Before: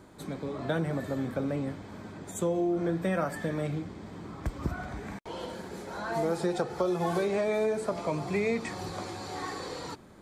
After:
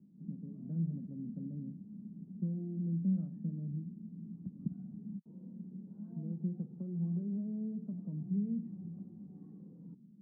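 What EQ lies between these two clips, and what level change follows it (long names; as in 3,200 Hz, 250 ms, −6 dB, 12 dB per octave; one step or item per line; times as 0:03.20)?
flat-topped band-pass 190 Hz, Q 2.7
+1.0 dB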